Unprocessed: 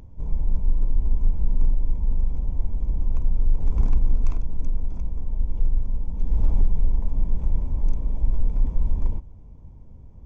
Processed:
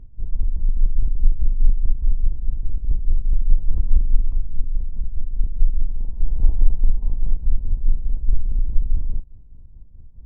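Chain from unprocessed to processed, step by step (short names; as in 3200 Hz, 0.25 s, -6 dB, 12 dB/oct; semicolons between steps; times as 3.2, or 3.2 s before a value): octaver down 2 oct, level -1 dB; tilt -3.5 dB/oct; tremolo 4.8 Hz, depth 60%; 5.88–7.37 bell 840 Hz +8 dB 1.9 oct; gain -13.5 dB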